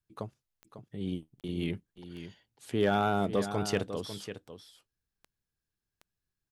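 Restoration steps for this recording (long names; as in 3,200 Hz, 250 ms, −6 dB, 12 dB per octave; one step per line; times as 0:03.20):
clipped peaks rebuilt −17 dBFS
click removal
repair the gap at 0:01.41, 28 ms
echo removal 548 ms −11 dB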